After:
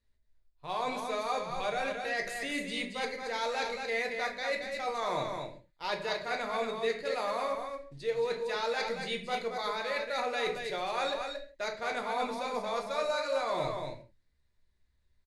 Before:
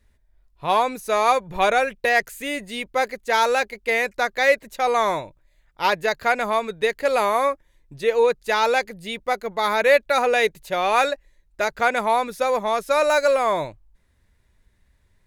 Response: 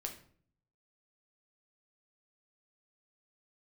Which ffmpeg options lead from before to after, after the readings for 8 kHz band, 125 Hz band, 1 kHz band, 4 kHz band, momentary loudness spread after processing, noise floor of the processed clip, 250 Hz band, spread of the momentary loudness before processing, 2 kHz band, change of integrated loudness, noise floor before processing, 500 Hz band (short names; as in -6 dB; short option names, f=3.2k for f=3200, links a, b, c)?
-11.5 dB, -6.5 dB, -13.0 dB, -7.5 dB, 6 LU, -72 dBFS, -8.5 dB, 8 LU, -12.5 dB, -12.5 dB, -63 dBFS, -12.0 dB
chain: -filter_complex "[0:a]acrusher=bits=7:mode=log:mix=0:aa=0.000001,lowpass=f=10k:w=0.5412,lowpass=f=10k:w=1.3066,equalizer=f=4.3k:t=o:w=0.54:g=8,areverse,acompressor=threshold=-27dB:ratio=6,areverse,aecho=1:1:226:0.531,agate=range=-12dB:threshold=-48dB:ratio=16:detection=peak[a];[1:a]atrim=start_sample=2205,afade=t=out:st=0.23:d=0.01,atrim=end_sample=10584[b];[a][b]afir=irnorm=-1:irlink=0,volume=-2.5dB"